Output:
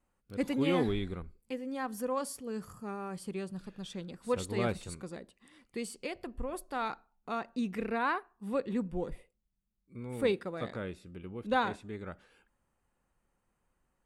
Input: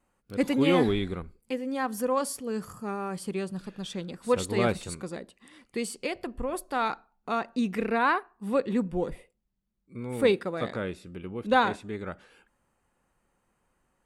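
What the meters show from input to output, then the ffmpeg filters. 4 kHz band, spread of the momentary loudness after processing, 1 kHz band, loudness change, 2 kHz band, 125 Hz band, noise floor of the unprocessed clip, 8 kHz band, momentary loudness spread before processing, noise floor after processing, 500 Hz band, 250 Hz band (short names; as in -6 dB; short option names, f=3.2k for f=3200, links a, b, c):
-7.0 dB, 13 LU, -7.0 dB, -6.5 dB, -7.0 dB, -4.5 dB, -75 dBFS, -7.0 dB, 13 LU, -80 dBFS, -6.5 dB, -6.0 dB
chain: -af "lowshelf=f=100:g=6.5,volume=-7dB"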